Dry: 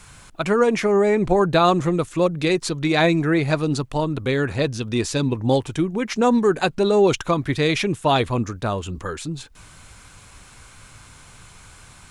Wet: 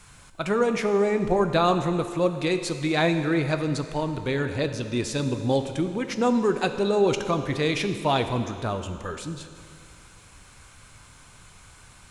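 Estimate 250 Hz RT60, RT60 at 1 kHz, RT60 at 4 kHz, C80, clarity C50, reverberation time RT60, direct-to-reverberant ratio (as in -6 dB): 2.3 s, 2.3 s, 2.3 s, 10.0 dB, 9.0 dB, 2.3 s, 7.5 dB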